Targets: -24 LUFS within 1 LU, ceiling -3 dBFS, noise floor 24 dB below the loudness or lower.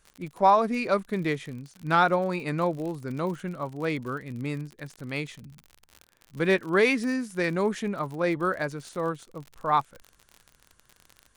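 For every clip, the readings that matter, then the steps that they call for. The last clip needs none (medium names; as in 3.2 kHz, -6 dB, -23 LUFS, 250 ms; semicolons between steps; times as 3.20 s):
tick rate 53 per s; loudness -27.0 LUFS; peak level -9.0 dBFS; loudness target -24.0 LUFS
-> de-click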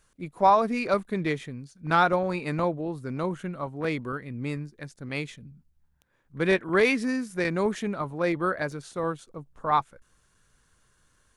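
tick rate 0.44 per s; loudness -27.0 LUFS; peak level -9.0 dBFS; loudness target -24.0 LUFS
-> trim +3 dB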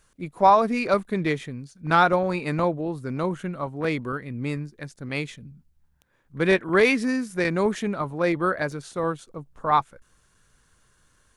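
loudness -24.0 LUFS; peak level -6.0 dBFS; noise floor -64 dBFS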